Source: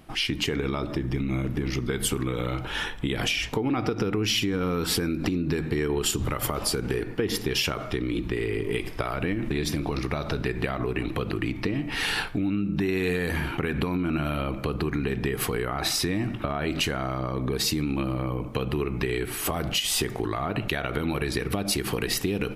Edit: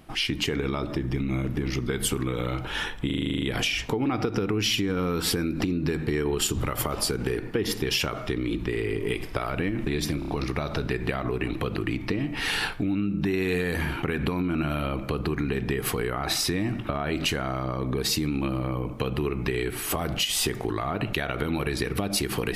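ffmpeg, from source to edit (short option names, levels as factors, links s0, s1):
-filter_complex "[0:a]asplit=13[s0][s1][s2][s3][s4][s5][s6][s7][s8][s9][s10][s11][s12];[s0]atrim=end=3.102[s13];[s1]atrim=start=3.058:end=3.102[s14];[s2]atrim=start=3.058:end=3.102[s15];[s3]atrim=start=3.058:end=3.102[s16];[s4]atrim=start=3.058:end=3.102[s17];[s5]atrim=start=3.058:end=3.102[s18];[s6]atrim=start=3.058:end=3.102[s19];[s7]atrim=start=3.058:end=3.102[s20];[s8]atrim=start=3.058:end=3.102[s21];[s9]atrim=start=3.058:end=9.862[s22];[s10]atrim=start=9.828:end=9.862[s23];[s11]atrim=start=9.828:end=9.862[s24];[s12]atrim=start=9.828[s25];[s13][s14]acrossfade=d=0.004:c1=hsin:c2=hsin[s26];[s26][s15]acrossfade=d=0.004:c1=hsin:c2=hsin[s27];[s27][s16]acrossfade=d=0.004:c1=hsin:c2=hsin[s28];[s28][s17]acrossfade=d=0.004:c1=hsin:c2=hsin[s29];[s29][s18]acrossfade=d=0.004:c1=hsin:c2=hsin[s30];[s30][s19]acrossfade=d=0.004:c1=hsin:c2=hsin[s31];[s31][s20]acrossfade=d=0.004:c1=hsin:c2=hsin[s32];[s32][s21]acrossfade=d=0.004:c1=hsin:c2=hsin[s33];[s33][s22]acrossfade=d=0.004:c1=hsin:c2=hsin[s34];[s34][s23]acrossfade=d=0.004:c1=hsin:c2=hsin[s35];[s35][s24]acrossfade=d=0.004:c1=hsin:c2=hsin[s36];[s36][s25]acrossfade=d=0.004:c1=hsin:c2=hsin"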